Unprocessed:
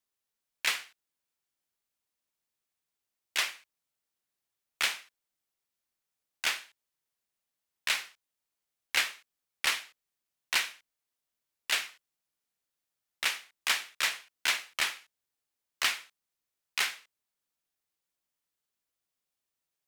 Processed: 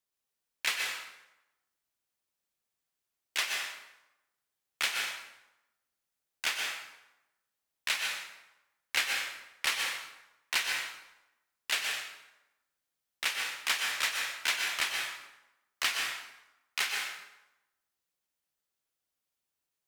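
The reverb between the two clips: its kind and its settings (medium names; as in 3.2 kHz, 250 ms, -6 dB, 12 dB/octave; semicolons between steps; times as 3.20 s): plate-style reverb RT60 0.94 s, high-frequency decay 0.75×, pre-delay 110 ms, DRR 1 dB; trim -2 dB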